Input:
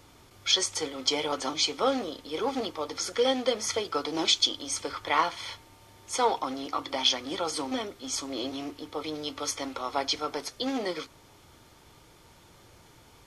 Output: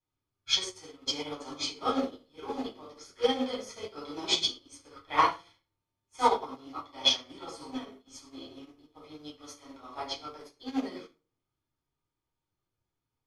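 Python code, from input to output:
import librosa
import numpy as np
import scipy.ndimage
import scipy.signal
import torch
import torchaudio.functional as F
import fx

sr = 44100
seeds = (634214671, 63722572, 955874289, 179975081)

y = fx.room_shoebox(x, sr, seeds[0], volume_m3=970.0, walls='furnished', distance_m=8.6)
y = fx.upward_expand(y, sr, threshold_db=-36.0, expansion=2.5)
y = y * librosa.db_to_amplitude(-6.5)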